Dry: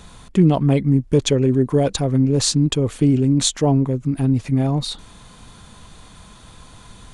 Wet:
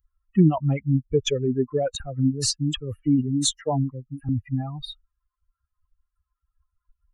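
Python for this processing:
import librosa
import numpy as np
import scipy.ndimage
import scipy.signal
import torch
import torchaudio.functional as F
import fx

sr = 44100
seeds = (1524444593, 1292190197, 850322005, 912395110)

y = fx.bin_expand(x, sr, power=3.0)
y = fx.dispersion(y, sr, late='lows', ms=50.0, hz=2000.0, at=(1.95, 4.29))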